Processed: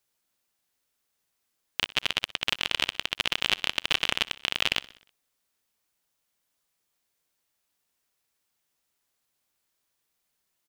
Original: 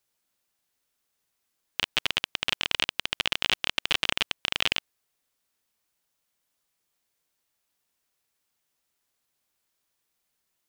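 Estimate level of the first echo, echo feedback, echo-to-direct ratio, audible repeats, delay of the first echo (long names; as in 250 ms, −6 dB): −20.0 dB, 58%, −18.0 dB, 4, 62 ms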